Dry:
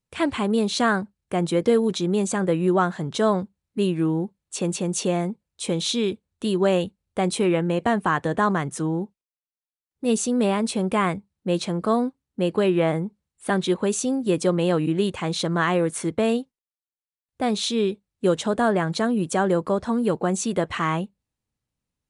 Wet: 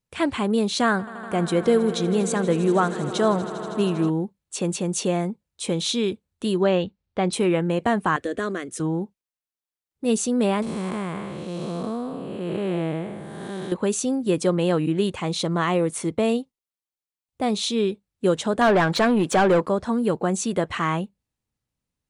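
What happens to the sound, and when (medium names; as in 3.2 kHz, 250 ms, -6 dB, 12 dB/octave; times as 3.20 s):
0.83–4.10 s: echo with a slow build-up 80 ms, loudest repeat 5, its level -18 dB
6.63–7.33 s: low-pass 5.2 kHz 24 dB/octave
8.16–8.80 s: static phaser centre 370 Hz, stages 4
10.62–13.72 s: spectral blur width 448 ms
15.19–17.76 s: peaking EQ 1.6 kHz -8 dB 0.27 oct
18.61–19.66 s: overdrive pedal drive 20 dB, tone 2.4 kHz, clips at -10 dBFS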